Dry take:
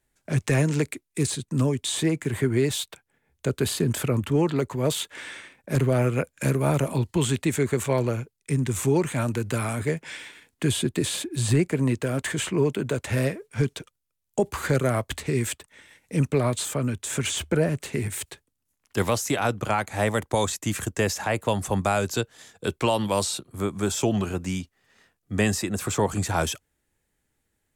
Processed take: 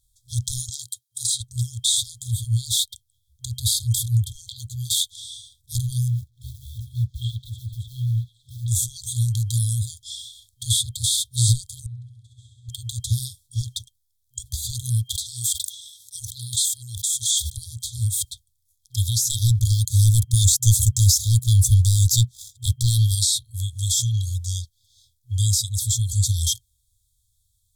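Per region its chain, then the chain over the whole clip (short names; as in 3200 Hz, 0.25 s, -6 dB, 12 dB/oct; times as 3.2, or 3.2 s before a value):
0.69–1.41 HPF 190 Hz + notch comb 890 Hz
6.08–8.68 air absorption 470 m + companded quantiser 8-bit + delay with a stepping band-pass 0.186 s, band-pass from 740 Hz, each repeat 0.7 oct, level -4.5 dB
11.86–12.69 band-pass 260 Hz, Q 3 + flutter echo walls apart 11.3 m, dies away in 1.1 s
15.04–17.58 HPF 270 Hz + sustainer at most 44 dB/s
19.3–23.15 bell 320 Hz +8.5 dB 2.4 oct + sample leveller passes 2 + fixed phaser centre 990 Hz, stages 4
whole clip: FFT band-reject 120–3200 Hz; de-esser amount 40%; gain +9 dB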